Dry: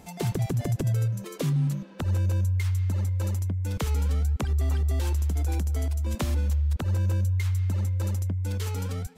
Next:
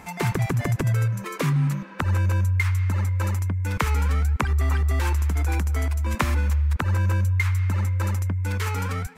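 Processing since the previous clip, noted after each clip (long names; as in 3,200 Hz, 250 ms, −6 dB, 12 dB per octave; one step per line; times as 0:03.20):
flat-topped bell 1,500 Hz +10.5 dB
level +3 dB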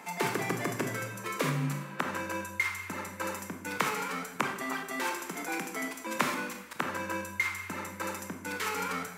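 Bessel high-pass filter 270 Hz, order 8
in parallel at −8 dB: hard clipping −18.5 dBFS, distortion −14 dB
on the sum: convolution reverb RT60 0.80 s, pre-delay 21 ms, DRR 3.5 dB
level −5.5 dB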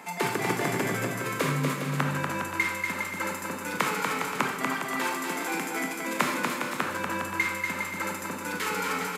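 notch filter 5,800 Hz, Q 23
on a send: bouncing-ball delay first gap 240 ms, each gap 0.7×, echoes 5
on the sum: downsampling to 32,000 Hz
level +2.5 dB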